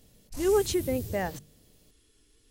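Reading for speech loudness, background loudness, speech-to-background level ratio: -28.5 LUFS, -39.5 LUFS, 11.0 dB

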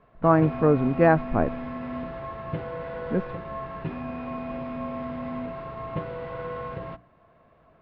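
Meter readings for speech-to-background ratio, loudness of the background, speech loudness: 11.5 dB, -34.5 LUFS, -23.0 LUFS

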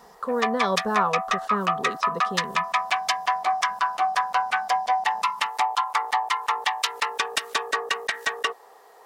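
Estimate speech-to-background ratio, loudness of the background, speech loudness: -4.0 dB, -25.0 LUFS, -29.0 LUFS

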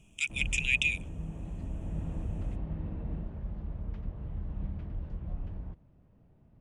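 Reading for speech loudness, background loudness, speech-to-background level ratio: -29.0 LUFS, -40.0 LUFS, 11.0 dB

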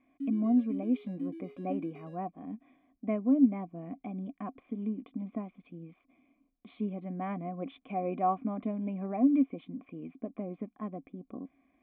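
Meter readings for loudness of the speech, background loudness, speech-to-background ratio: -33.5 LUFS, -41.5 LUFS, 8.0 dB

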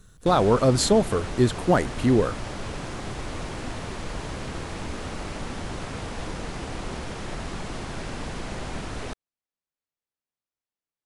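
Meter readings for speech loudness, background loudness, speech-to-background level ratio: -22.0 LUFS, -34.5 LUFS, 12.5 dB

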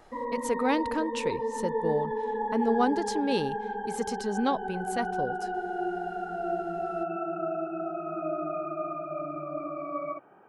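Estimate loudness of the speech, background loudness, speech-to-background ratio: -31.0 LUFS, -33.0 LUFS, 2.0 dB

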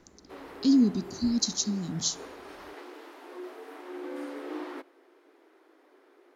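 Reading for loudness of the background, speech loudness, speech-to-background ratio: -43.0 LUFS, -27.0 LUFS, 16.0 dB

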